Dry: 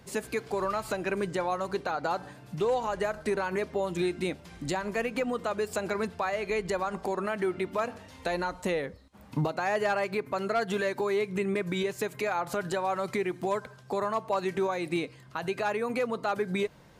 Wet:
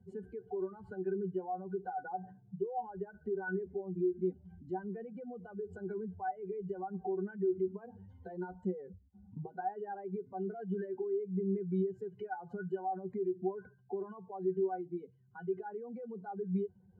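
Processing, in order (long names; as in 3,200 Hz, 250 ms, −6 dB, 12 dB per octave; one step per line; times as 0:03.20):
expanding power law on the bin magnitudes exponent 2.1
resonances in every octave F#, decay 0.1 s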